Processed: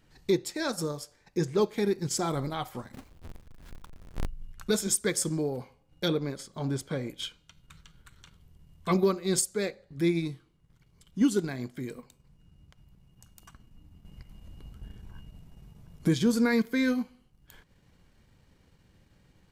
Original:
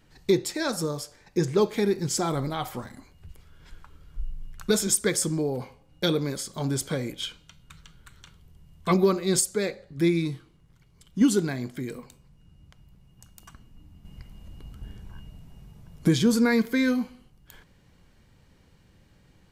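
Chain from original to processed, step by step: 2.93–4.27 s: square wave that keeps the level; transient shaper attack -2 dB, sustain -6 dB; 6.08–7.10 s: treble shelf 4.9 kHz -10.5 dB; trim -2.5 dB

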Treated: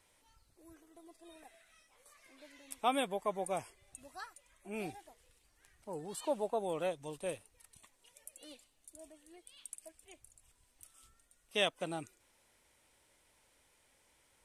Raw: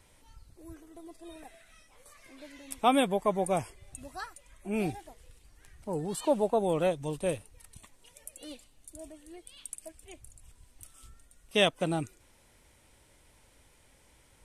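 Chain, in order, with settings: bass shelf 250 Hz -11.5 dB; trim -6 dB

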